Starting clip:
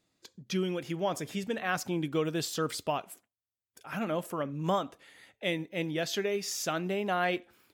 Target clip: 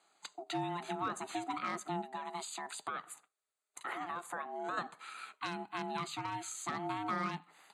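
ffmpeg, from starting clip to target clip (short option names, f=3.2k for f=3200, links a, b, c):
-filter_complex "[0:a]asuperstop=centerf=5400:order=20:qfactor=2.3,asplit=3[a][b][c];[a]afade=t=out:st=2.01:d=0.02[d];[b]acompressor=threshold=-41dB:ratio=6,afade=t=in:st=2.01:d=0.02,afade=t=out:st=4.77:d=0.02[e];[c]afade=t=in:st=4.77:d=0.02[f];[d][e][f]amix=inputs=3:normalize=0,aeval=exprs='clip(val(0),-1,0.0668)':c=same,aeval=exprs='val(0)*sin(2*PI*520*n/s)':c=same,tiltshelf=f=1.5k:g=-5,acrossover=split=340[g][h];[h]acompressor=threshold=-47dB:ratio=10[i];[g][i]amix=inputs=2:normalize=0,highpass=f=190:w=0.5412,highpass=f=190:w=1.3066,equalizer=f=230:t=q:w=4:g=-10,equalizer=f=520:t=q:w=4:g=4,equalizer=f=770:t=q:w=4:g=4,equalizer=f=1.3k:t=q:w=4:g=9,equalizer=f=3.1k:t=q:w=4:g=-7,lowpass=f=9.2k:w=0.5412,lowpass=f=9.2k:w=1.3066,volume=8dB"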